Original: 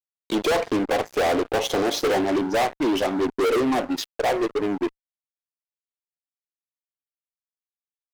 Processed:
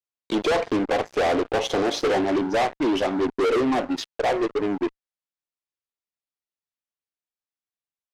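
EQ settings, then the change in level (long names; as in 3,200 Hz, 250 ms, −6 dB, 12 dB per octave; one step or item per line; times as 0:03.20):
high-frequency loss of the air 54 metres
0.0 dB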